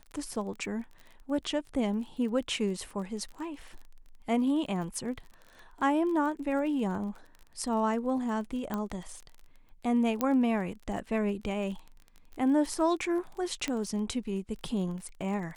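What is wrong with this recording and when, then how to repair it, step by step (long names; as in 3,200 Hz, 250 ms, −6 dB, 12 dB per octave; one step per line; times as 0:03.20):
surface crackle 31 per second −39 dBFS
0:08.74: click −19 dBFS
0:10.21: click −14 dBFS
0:13.68: click −18 dBFS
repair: click removal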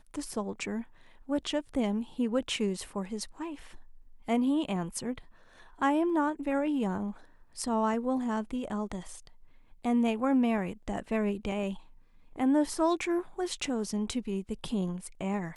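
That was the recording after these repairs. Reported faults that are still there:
none of them is left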